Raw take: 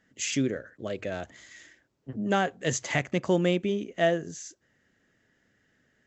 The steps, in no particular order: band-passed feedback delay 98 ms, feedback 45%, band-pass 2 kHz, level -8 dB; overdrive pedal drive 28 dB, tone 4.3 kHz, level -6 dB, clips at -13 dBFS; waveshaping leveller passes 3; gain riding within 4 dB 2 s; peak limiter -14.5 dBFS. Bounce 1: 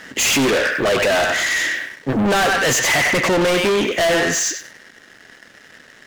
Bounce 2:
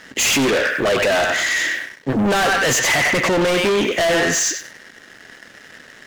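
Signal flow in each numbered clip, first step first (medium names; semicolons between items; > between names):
gain riding > peak limiter > band-passed feedback delay > overdrive pedal > waveshaping leveller; band-passed feedback delay > overdrive pedal > gain riding > waveshaping leveller > peak limiter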